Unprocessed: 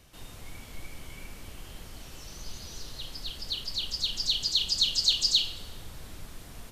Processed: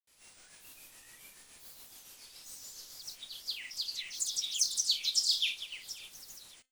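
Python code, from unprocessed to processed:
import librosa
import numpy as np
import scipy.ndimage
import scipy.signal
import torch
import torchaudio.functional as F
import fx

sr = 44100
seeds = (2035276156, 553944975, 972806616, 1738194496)

y = fx.echo_feedback(x, sr, ms=608, feedback_pct=34, wet_db=-14.5)
y = fx.granulator(y, sr, seeds[0], grain_ms=258.0, per_s=7.1, spray_ms=100.0, spread_st=7)
y = fx.riaa(y, sr, side='recording')
y = fx.comb_fb(y, sr, f0_hz=260.0, decay_s=0.28, harmonics='all', damping=0.0, mix_pct=40)
y = F.gain(torch.from_numpy(y), -7.0).numpy()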